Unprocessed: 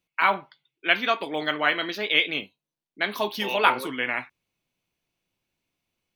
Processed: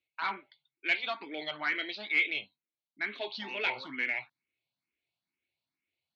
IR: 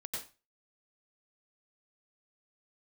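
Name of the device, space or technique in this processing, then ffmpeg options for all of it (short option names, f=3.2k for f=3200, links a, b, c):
barber-pole phaser into a guitar amplifier: -filter_complex "[0:a]asplit=2[a][b];[b]afreqshift=2.2[c];[a][c]amix=inputs=2:normalize=1,asoftclip=type=tanh:threshold=-17.5dB,highpass=98,equalizer=f=180:t=q:w=4:g=-8,equalizer=f=480:t=q:w=4:g=-5,equalizer=f=1.1k:t=q:w=4:g=-4,equalizer=f=2.2k:t=q:w=4:g=8,equalizer=f=4.2k:t=q:w=4:g=8,lowpass=f=4.6k:w=0.5412,lowpass=f=4.6k:w=1.3066,volume=-7dB"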